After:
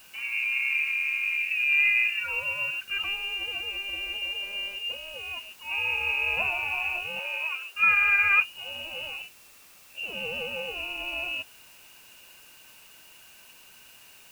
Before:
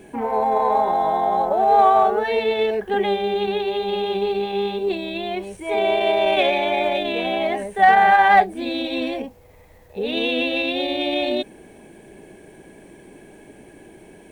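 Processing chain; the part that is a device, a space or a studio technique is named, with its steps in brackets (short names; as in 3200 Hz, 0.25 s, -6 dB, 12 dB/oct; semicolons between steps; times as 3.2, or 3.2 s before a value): scrambled radio voice (BPF 390–2900 Hz; inverted band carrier 3200 Hz; white noise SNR 24 dB); 7.19–7.75 Chebyshev high-pass 350 Hz, order 8; gain -8 dB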